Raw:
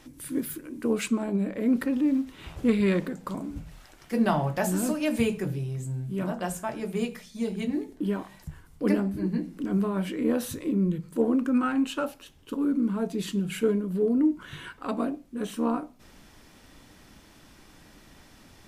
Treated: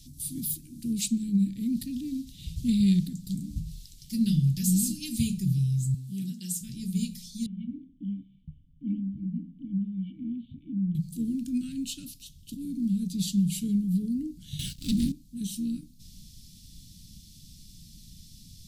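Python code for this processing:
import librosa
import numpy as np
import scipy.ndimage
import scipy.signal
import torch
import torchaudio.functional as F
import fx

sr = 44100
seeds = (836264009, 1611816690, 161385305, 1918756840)

y = fx.highpass(x, sr, hz=260.0, slope=12, at=(5.94, 6.61))
y = fx.formant_cascade(y, sr, vowel='i', at=(7.46, 10.95))
y = fx.leveller(y, sr, passes=3, at=(14.59, 15.12))
y = scipy.signal.sosfilt(scipy.signal.ellip(3, 1.0, 80, [180.0, 4000.0], 'bandstop', fs=sr, output='sos'), y)
y = y * librosa.db_to_amplitude(7.0)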